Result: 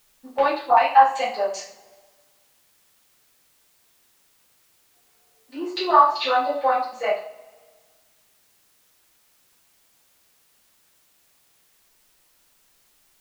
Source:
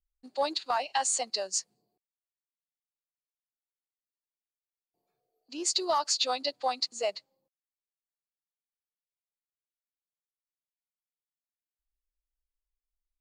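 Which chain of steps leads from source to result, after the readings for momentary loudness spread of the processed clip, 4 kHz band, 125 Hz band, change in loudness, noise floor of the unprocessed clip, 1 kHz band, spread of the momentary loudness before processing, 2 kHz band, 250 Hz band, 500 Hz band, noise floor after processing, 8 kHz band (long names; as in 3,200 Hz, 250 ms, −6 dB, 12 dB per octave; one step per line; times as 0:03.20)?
14 LU, −1.5 dB, can't be measured, +9.0 dB, below −85 dBFS, +14.5 dB, 7 LU, +12.0 dB, +8.5 dB, +9.5 dB, −62 dBFS, below −10 dB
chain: auto-filter low-pass saw down 2.6 Hz 710–2,700 Hz
coupled-rooms reverb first 0.42 s, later 1.6 s, from −21 dB, DRR −9 dB
background noise white −62 dBFS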